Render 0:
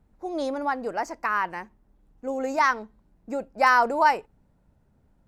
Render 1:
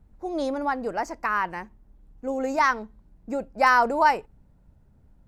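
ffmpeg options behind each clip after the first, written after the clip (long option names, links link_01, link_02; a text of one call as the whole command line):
ffmpeg -i in.wav -af "lowshelf=frequency=150:gain=9" out.wav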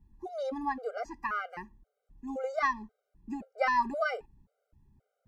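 ffmpeg -i in.wav -filter_complex "[0:a]acrossover=split=5700[link_01][link_02];[link_02]acompressor=threshold=-60dB:ratio=4:attack=1:release=60[link_03];[link_01][link_03]amix=inputs=2:normalize=0,afftfilt=real='re*gt(sin(2*PI*1.9*pts/sr)*(1-2*mod(floor(b*sr/1024/400),2)),0)':imag='im*gt(sin(2*PI*1.9*pts/sr)*(1-2*mod(floor(b*sr/1024/400),2)),0)':win_size=1024:overlap=0.75,volume=-5dB" out.wav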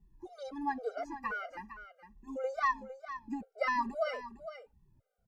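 ffmpeg -i in.wav -filter_complex "[0:a]asplit=2[link_01][link_02];[link_02]aecho=0:1:457:0.251[link_03];[link_01][link_03]amix=inputs=2:normalize=0,asplit=2[link_04][link_05];[link_05]adelay=2.2,afreqshift=-2.3[link_06];[link_04][link_06]amix=inputs=2:normalize=1" out.wav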